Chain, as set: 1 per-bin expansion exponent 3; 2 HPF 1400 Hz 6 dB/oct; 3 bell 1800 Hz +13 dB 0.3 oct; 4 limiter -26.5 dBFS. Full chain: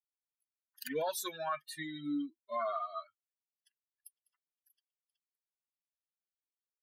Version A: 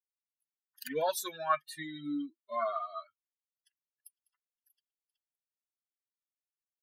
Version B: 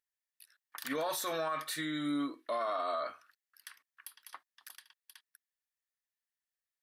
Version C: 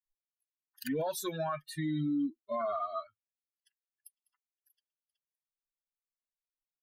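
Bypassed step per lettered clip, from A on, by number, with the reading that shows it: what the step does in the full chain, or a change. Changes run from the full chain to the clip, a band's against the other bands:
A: 4, crest factor change +7.0 dB; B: 1, 4 kHz band +2.0 dB; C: 2, 125 Hz band +15.0 dB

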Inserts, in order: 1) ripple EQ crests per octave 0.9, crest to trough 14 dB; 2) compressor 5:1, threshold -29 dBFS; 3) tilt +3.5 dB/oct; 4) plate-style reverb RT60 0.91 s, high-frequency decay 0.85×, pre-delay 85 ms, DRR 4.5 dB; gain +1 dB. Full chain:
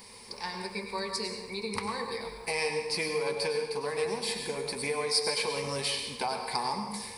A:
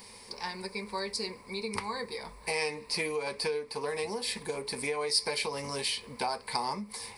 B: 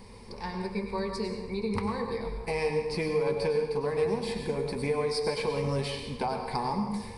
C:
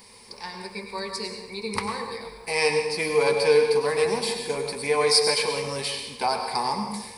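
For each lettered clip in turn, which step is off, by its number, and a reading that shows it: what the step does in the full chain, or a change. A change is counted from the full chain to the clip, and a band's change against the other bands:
4, crest factor change +2.0 dB; 3, 8 kHz band -13.0 dB; 2, mean gain reduction 4.0 dB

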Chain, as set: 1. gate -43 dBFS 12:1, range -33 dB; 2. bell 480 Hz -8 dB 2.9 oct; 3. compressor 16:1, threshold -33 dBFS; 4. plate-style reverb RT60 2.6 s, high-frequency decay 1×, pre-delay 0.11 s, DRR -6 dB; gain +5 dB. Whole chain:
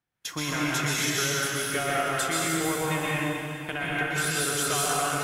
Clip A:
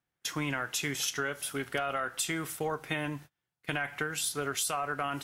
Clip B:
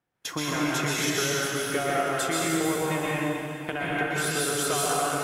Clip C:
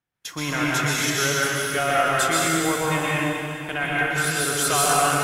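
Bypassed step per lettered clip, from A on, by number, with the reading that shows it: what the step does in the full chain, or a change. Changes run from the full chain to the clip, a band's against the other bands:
4, crest factor change +3.5 dB; 2, 500 Hz band +4.0 dB; 3, mean gain reduction 4.0 dB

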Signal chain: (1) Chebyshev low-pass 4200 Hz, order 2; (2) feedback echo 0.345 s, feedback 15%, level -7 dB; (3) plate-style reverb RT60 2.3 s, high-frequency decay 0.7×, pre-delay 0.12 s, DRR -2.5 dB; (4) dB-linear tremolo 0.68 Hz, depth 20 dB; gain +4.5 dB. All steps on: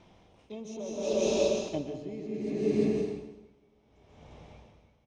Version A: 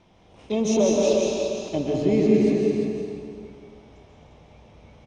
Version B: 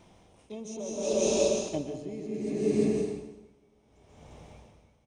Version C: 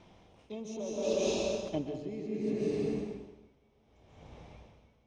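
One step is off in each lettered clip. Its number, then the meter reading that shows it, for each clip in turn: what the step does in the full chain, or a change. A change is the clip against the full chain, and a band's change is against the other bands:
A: 4, crest factor change -2.5 dB; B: 1, 8 kHz band +6.0 dB; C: 2, momentary loudness spread change +5 LU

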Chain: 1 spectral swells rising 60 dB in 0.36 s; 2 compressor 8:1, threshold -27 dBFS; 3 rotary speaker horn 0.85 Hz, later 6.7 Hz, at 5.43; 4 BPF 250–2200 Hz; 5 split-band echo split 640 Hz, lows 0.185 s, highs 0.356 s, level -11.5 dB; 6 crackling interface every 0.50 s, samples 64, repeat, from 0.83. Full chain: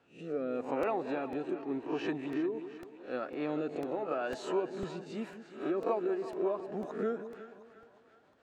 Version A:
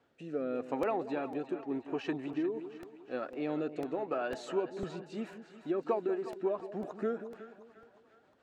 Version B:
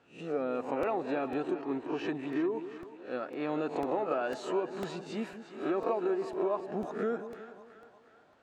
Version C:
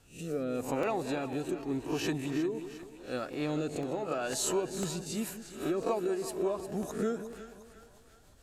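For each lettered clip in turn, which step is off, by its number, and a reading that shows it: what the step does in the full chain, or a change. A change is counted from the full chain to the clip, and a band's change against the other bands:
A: 1, momentary loudness spread change +1 LU; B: 3, loudness change +1.5 LU; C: 4, 4 kHz band +7.5 dB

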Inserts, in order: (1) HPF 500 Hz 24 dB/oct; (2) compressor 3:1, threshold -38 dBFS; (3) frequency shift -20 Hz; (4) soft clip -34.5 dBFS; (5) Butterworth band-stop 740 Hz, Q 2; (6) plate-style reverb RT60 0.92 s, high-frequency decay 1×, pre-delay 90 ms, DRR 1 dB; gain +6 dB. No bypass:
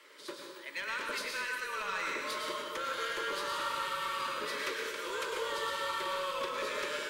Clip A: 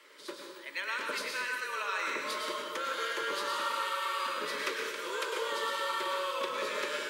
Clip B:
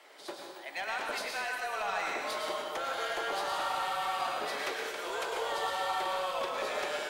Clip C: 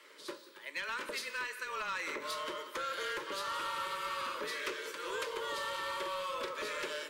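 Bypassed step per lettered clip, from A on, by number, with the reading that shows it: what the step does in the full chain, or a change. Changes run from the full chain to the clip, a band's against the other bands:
4, distortion -17 dB; 5, 1 kHz band +3.5 dB; 6, loudness change -2.5 LU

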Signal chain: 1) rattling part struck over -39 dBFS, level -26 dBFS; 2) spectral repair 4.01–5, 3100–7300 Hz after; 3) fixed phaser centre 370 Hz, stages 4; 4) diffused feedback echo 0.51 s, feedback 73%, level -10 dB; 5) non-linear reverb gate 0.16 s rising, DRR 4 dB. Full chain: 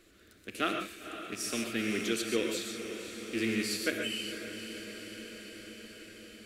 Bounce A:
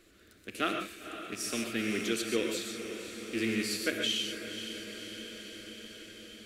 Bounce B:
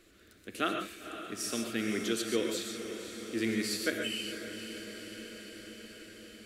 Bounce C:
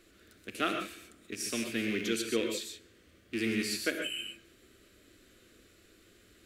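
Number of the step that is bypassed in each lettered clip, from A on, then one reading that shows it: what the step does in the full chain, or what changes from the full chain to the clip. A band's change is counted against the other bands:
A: 2, 4 kHz band +2.5 dB; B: 1, 2 kHz band -1.5 dB; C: 4, echo-to-direct -1.5 dB to -4.0 dB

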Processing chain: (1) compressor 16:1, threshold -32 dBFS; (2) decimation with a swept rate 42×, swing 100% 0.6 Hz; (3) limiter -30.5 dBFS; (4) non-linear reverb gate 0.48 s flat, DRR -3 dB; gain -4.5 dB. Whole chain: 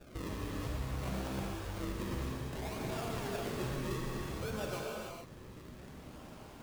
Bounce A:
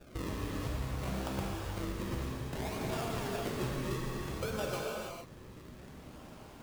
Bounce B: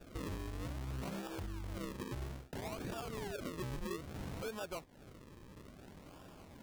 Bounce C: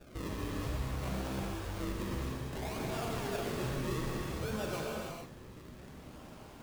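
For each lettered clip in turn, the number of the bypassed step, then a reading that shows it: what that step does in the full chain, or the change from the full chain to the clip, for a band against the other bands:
3, momentary loudness spread change +2 LU; 4, crest factor change -5.5 dB; 1, mean gain reduction 6.0 dB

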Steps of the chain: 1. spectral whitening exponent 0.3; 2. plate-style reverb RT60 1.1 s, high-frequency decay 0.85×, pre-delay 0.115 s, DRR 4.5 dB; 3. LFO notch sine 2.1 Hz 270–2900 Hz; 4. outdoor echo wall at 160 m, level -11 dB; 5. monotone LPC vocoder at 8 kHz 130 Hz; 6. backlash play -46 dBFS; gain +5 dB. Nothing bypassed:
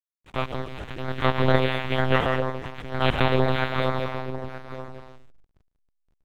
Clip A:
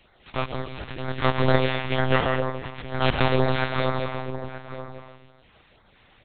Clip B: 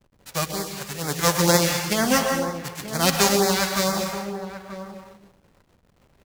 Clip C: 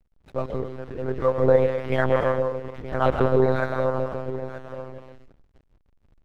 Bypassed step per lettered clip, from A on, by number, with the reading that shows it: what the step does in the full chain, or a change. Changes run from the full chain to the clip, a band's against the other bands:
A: 6, distortion -24 dB; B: 5, 4 kHz band +5.5 dB; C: 1, 4 kHz band -11.5 dB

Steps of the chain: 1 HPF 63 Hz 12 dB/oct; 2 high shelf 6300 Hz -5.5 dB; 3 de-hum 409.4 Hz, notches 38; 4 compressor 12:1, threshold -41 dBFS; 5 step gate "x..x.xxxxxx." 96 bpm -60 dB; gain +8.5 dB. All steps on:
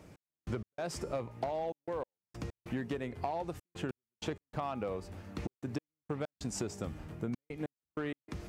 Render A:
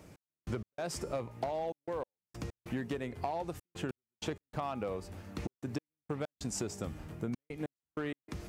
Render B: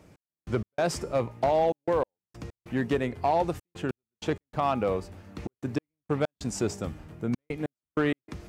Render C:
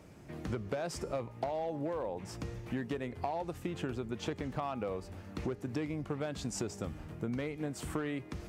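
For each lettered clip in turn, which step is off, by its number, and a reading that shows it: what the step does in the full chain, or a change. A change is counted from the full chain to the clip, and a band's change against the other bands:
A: 2, 8 kHz band +2.5 dB; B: 4, mean gain reduction 6.5 dB; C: 5, momentary loudness spread change -1 LU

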